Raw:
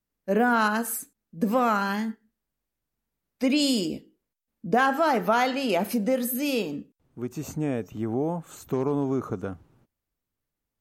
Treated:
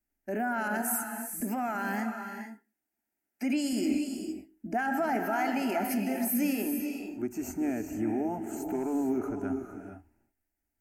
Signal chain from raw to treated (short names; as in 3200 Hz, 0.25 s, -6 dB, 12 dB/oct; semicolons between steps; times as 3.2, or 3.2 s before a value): 1.4–3.73 Bessel high-pass 190 Hz, order 2; limiter -21 dBFS, peak gain reduction 10.5 dB; fixed phaser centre 740 Hz, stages 8; non-linear reverb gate 0.49 s rising, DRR 5.5 dB; gain +1.5 dB